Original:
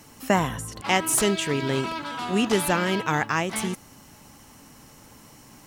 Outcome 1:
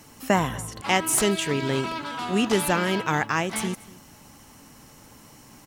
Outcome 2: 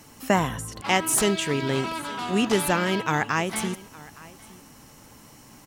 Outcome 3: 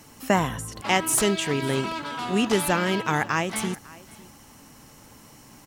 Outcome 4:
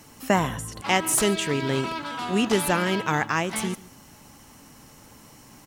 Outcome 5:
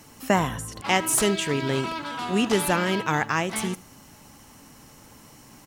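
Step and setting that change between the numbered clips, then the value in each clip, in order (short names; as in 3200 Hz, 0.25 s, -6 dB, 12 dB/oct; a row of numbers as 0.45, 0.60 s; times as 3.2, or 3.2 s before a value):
echo, time: 241, 863, 551, 142, 76 ms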